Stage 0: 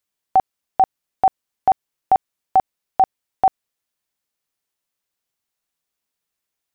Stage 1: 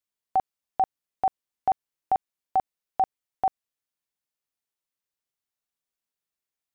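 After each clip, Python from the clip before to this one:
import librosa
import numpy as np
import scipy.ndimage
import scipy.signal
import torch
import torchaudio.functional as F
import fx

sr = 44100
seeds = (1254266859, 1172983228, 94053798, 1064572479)

y = fx.rider(x, sr, range_db=3, speed_s=0.5)
y = F.gain(torch.from_numpy(y), -8.5).numpy()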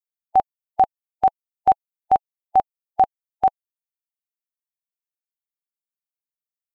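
y = fx.bin_expand(x, sr, power=2.0)
y = F.gain(torch.from_numpy(y), 9.0).numpy()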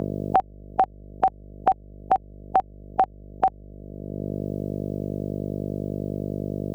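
y = fx.dmg_buzz(x, sr, base_hz=50.0, harmonics=13, level_db=-43.0, tilt_db=-6, odd_only=False)
y = fx.band_squash(y, sr, depth_pct=100)
y = F.gain(torch.from_numpy(y), -1.0).numpy()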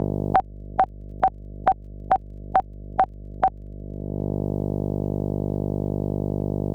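y = fx.dmg_crackle(x, sr, seeds[0], per_s=20.0, level_db=-51.0)
y = fx.low_shelf(y, sr, hz=270.0, db=6.5)
y = fx.doppler_dist(y, sr, depth_ms=0.35)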